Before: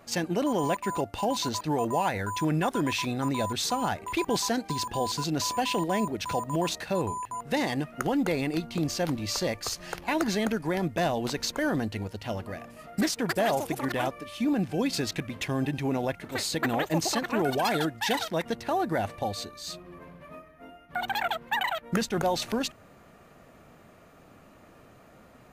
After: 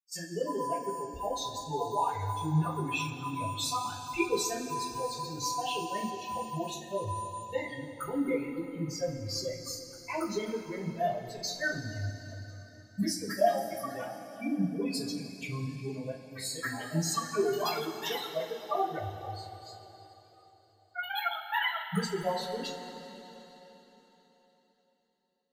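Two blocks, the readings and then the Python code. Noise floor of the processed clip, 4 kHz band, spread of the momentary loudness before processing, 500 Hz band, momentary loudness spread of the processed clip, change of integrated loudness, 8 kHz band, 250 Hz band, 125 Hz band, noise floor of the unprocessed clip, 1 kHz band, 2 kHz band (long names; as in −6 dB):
−66 dBFS, −5.0 dB, 8 LU, −4.0 dB, 11 LU, −4.5 dB, −4.0 dB, −7.0 dB, −3.5 dB, −54 dBFS, −3.5 dB, −4.5 dB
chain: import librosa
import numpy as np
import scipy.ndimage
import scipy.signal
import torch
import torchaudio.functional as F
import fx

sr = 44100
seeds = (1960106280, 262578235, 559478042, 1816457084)

y = fx.bin_expand(x, sr, power=3.0)
y = fx.rev_double_slope(y, sr, seeds[0], early_s=0.28, late_s=3.9, knee_db=-18, drr_db=-9.5)
y = y * 10.0 ** (-5.0 / 20.0)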